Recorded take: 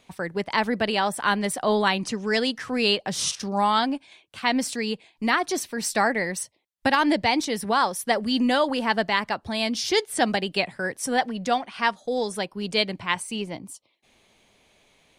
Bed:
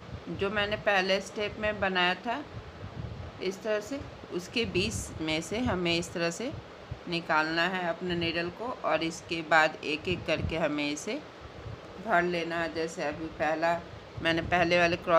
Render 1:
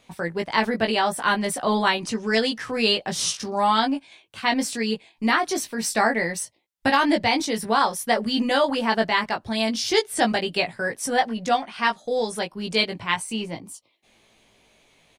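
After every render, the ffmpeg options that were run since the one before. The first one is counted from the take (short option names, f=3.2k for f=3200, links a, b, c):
-filter_complex "[0:a]asplit=2[a][b];[b]adelay=18,volume=-4dB[c];[a][c]amix=inputs=2:normalize=0"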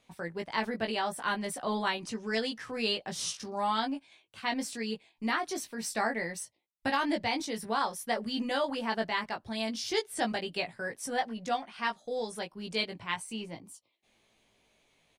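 -af "volume=-10dB"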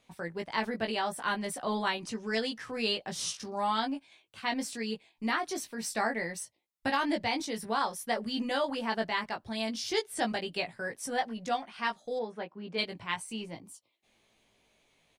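-filter_complex "[0:a]asplit=3[a][b][c];[a]afade=t=out:st=12.18:d=0.02[d];[b]highpass=160,lowpass=2k,afade=t=in:st=12.18:d=0.02,afade=t=out:st=12.77:d=0.02[e];[c]afade=t=in:st=12.77:d=0.02[f];[d][e][f]amix=inputs=3:normalize=0"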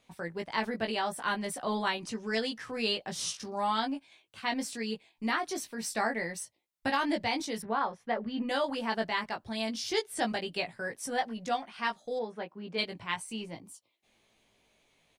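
-filter_complex "[0:a]asettb=1/sr,asplit=3[a][b][c];[a]atrim=end=7.624[d];[b]atrim=start=7.62:end=8.49,asetpts=PTS-STARTPTS,afade=t=in:d=0.004:c=qsin,afade=t=out:st=0.866:d=0.004:c=qsin,lowpass=2.1k[e];[c]atrim=start=8.486[f];[d][e]acrossfade=d=0.004:c1=hsin:c2=qsin[g];[g][f]acrossfade=d=0.004:c1=qsin:c2=hsin"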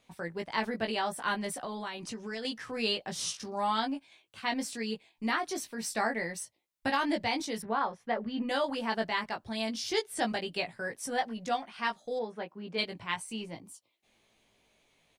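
-filter_complex "[0:a]asettb=1/sr,asplit=3[a][b][c];[a]atrim=end=1.644[d];[b]atrim=start=1.64:end=2.45,asetpts=PTS-STARTPTS,afade=t=in:d=0.004:c=qsin,afade=t=out:st=0.806:d=0.004:c=qsin,acompressor=threshold=-35dB:ratio=4:attack=3.2:release=140:knee=1:detection=peak[e];[c]atrim=start=2.446[f];[d][e]acrossfade=d=0.004:c1=hsin:c2=qsin[g];[g][f]acrossfade=d=0.004:c1=qsin:c2=hsin"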